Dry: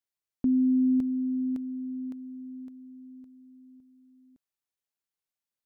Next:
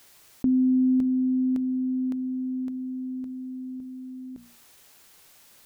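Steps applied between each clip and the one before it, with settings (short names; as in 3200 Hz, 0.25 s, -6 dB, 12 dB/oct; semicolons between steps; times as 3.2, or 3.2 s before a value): notches 60/120/180/240 Hz; fast leveller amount 50%; gain +2 dB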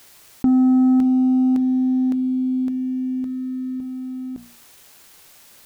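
sample leveller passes 1; gain +5 dB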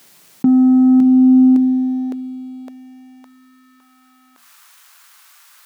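high-pass sweep 170 Hz -> 1200 Hz, 0.82–3.76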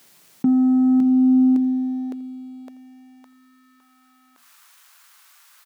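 echo 84 ms -21 dB; gain -5 dB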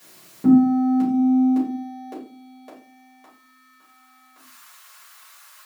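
shoebox room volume 190 m³, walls furnished, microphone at 5.7 m; gain -4.5 dB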